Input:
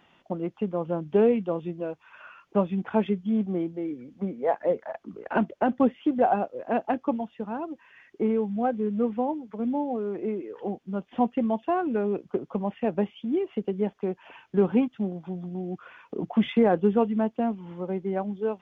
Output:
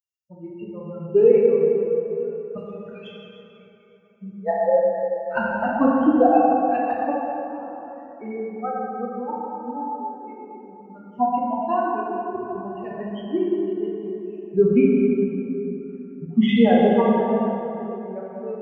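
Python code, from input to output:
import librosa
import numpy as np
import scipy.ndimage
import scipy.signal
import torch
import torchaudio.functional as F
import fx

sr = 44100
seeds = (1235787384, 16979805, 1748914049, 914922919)

y = fx.bin_expand(x, sr, power=3.0)
y = fx.steep_highpass(y, sr, hz=1500.0, slope=72, at=(2.56, 4.13), fade=0.02)
y = fx.rev_plate(y, sr, seeds[0], rt60_s=3.5, hf_ratio=0.55, predelay_ms=0, drr_db=-5.5)
y = F.gain(torch.from_numpy(y), 7.0).numpy()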